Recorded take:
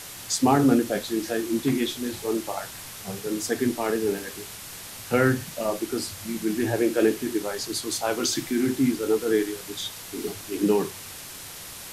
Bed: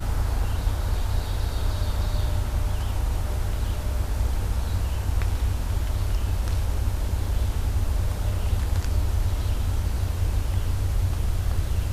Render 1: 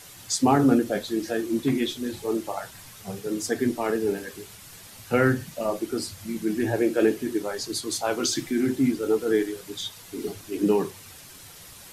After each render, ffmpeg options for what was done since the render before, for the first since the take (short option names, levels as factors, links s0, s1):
-af "afftdn=nr=8:nf=-40"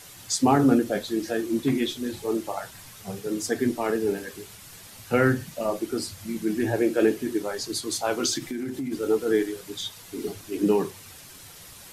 -filter_complex "[0:a]asplit=3[s0][s1][s2];[s0]afade=t=out:st=8.37:d=0.02[s3];[s1]acompressor=threshold=0.0447:ratio=10:attack=3.2:release=140:knee=1:detection=peak,afade=t=in:st=8.37:d=0.02,afade=t=out:st=8.91:d=0.02[s4];[s2]afade=t=in:st=8.91:d=0.02[s5];[s3][s4][s5]amix=inputs=3:normalize=0"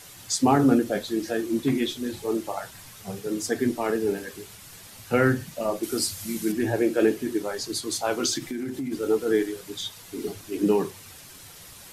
-filter_complex "[0:a]asettb=1/sr,asplit=3[s0][s1][s2];[s0]atrim=end=5.834[s3];[s1]atrim=start=5.83:end=6.52,asetpts=PTS-STARTPTS,afade=t=in:d=0.004:c=qsin,afade=t=out:st=0.686:d=0.004:c=qsin,highshelf=f=3800:g=10.5[s4];[s2]atrim=start=6.516[s5];[s3][s4]acrossfade=d=0.004:c1=hsin:c2=qsin[s6];[s6][s5]acrossfade=d=0.004:c1=qsin:c2=hsin"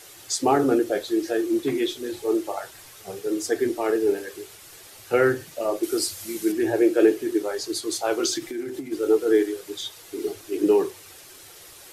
-af "lowshelf=f=280:t=q:w=3:g=-6.5,bandreject=f=990:w=18"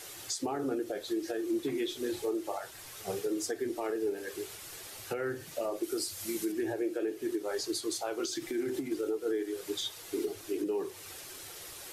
-af "acompressor=threshold=0.0501:ratio=3,alimiter=limit=0.0631:level=0:latency=1:release=417"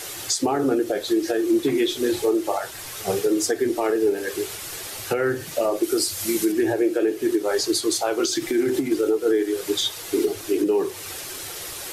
-af "volume=3.98"